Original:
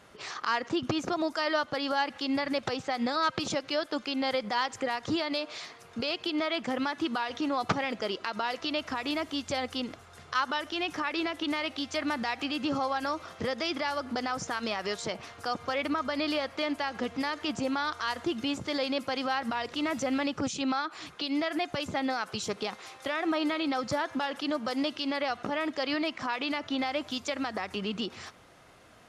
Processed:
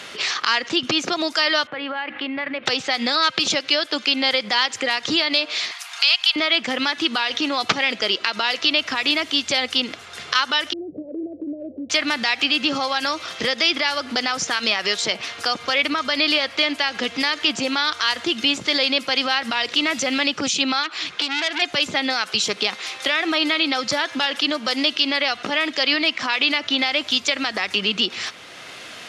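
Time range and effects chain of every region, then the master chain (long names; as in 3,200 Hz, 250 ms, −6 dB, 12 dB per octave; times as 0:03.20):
0:01.67–0:02.66: low-pass filter 2,300 Hz 24 dB per octave + mains-hum notches 50/100/150/200/250/300/350/400/450/500 Hz + downward compressor 3 to 1, threshold −35 dBFS
0:05.71–0:06.36: Butterworth high-pass 730 Hz 48 dB per octave + high-shelf EQ 6,700 Hz +11.5 dB
0:10.73–0:11.90: Butterworth low-pass 600 Hz 72 dB per octave + downward compressor 1.5 to 1, threshold −41 dBFS
0:20.83–0:21.62: low-pass filter 6,500 Hz + saturating transformer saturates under 3,200 Hz
whole clip: meter weighting curve D; multiband upward and downward compressor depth 40%; level +5.5 dB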